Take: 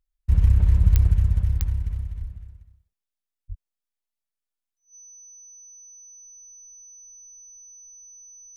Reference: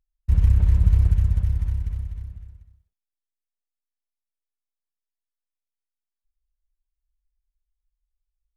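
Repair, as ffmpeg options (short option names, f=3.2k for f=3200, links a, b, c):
-filter_complex "[0:a]adeclick=t=4,bandreject=f=6k:w=30,asplit=3[a][b][c];[a]afade=t=out:st=0.82:d=0.02[d];[b]highpass=f=140:w=0.5412,highpass=f=140:w=1.3066,afade=t=in:st=0.82:d=0.02,afade=t=out:st=0.94:d=0.02[e];[c]afade=t=in:st=0.94:d=0.02[f];[d][e][f]amix=inputs=3:normalize=0,asplit=3[g][h][i];[g]afade=t=out:st=2.2:d=0.02[j];[h]highpass=f=140:w=0.5412,highpass=f=140:w=1.3066,afade=t=in:st=2.2:d=0.02,afade=t=out:st=2.32:d=0.02[k];[i]afade=t=in:st=2.32:d=0.02[l];[j][k][l]amix=inputs=3:normalize=0,asplit=3[m][n][o];[m]afade=t=out:st=3.48:d=0.02[p];[n]highpass=f=140:w=0.5412,highpass=f=140:w=1.3066,afade=t=in:st=3.48:d=0.02,afade=t=out:st=3.6:d=0.02[q];[o]afade=t=in:st=3.6:d=0.02[r];[p][q][r]amix=inputs=3:normalize=0"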